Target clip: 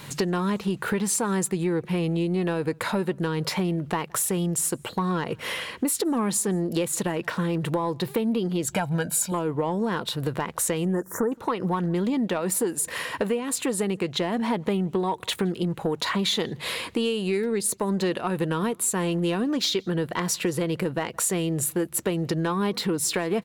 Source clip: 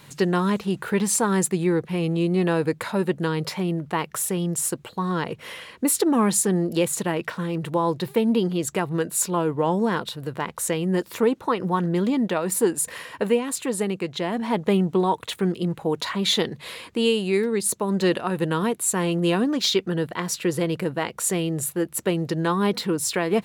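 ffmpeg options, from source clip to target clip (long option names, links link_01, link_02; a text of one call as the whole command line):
ffmpeg -i in.wav -filter_complex "[0:a]asettb=1/sr,asplit=3[link_01][link_02][link_03];[link_01]atrim=end=8.694[link_04];[link_02]atrim=start=8.69:end=9.32,asetpts=PTS-STARTPTS,afade=type=in:duration=0.004:curve=qsin,afade=type=out:start_time=0.626:duration=0.004:curve=qsin,aecho=1:1:1.3:0.85,atrim=end_sample=27783[link_05];[link_03]atrim=start=9.316[link_06];[link_04][link_05]acrossfade=duration=0.004:curve1=hsin:curve2=qsin[link_07];[link_07][link_06]acrossfade=duration=0.004:curve1=qsin:curve2=hsin,acompressor=threshold=-29dB:ratio=6,asoftclip=type=tanh:threshold=-20.5dB,asettb=1/sr,asplit=3[link_08][link_09][link_10];[link_08]atrim=end=10.854[link_11];[link_09]atrim=start=10.85:end=11.32,asetpts=PTS-STARTPTS,afade=type=in:duration=0.004:curve=qsin,afade=type=out:start_time=0.466:duration=0.004:curve=qsin,asuperstop=centerf=3300:order=12:qfactor=0.82[link_12];[link_10]atrim=start=11.316[link_13];[link_11][link_12]acrossfade=duration=0.004:curve1=hsin:curve2=qsin[link_14];[link_14][link_13]acrossfade=duration=0.004:curve1=qsin:curve2=hsin,asplit=2[link_15][link_16];[link_16]adelay=169.1,volume=-29dB,highshelf=frequency=4000:gain=-3.8[link_17];[link_15][link_17]amix=inputs=2:normalize=0,volume=7dB" out.wav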